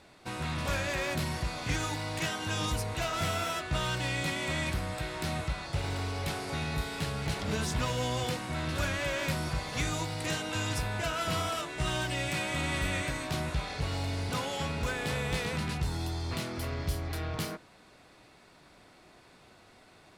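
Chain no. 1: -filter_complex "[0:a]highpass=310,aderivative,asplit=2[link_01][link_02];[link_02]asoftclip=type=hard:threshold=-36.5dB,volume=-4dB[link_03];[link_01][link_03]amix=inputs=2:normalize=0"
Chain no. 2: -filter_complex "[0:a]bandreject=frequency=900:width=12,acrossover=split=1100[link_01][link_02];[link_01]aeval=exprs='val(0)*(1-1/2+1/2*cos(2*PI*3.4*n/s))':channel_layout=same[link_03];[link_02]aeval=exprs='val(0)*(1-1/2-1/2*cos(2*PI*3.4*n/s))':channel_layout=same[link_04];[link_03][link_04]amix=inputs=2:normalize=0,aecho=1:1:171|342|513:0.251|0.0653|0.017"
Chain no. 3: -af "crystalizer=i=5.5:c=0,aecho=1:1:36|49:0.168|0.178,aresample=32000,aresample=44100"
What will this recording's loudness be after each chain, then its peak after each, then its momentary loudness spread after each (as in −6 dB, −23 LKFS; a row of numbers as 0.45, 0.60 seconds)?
−38.0, −37.0, −25.0 LKFS; −23.0, −22.5, −8.5 dBFS; 6, 4, 5 LU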